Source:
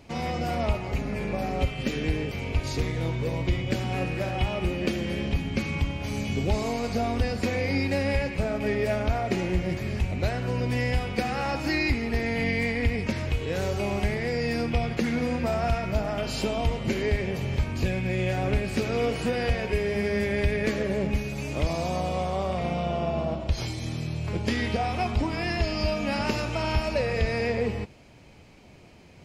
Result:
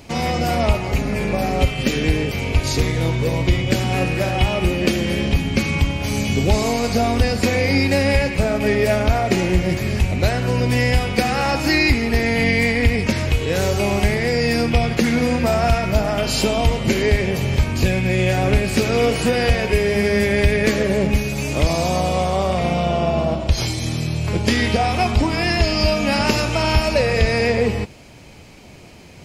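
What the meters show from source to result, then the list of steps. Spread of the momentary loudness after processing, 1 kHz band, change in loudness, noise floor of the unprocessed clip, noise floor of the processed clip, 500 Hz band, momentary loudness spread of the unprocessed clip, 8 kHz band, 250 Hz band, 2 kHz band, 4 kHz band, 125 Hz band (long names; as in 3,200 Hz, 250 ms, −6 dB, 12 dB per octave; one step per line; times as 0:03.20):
4 LU, +8.5 dB, +9.0 dB, −48 dBFS, −40 dBFS, +8.5 dB, 4 LU, +13.5 dB, +8.5 dB, +9.5 dB, +11.5 dB, +8.5 dB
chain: high-shelf EQ 5,200 Hz +8 dB
level +8.5 dB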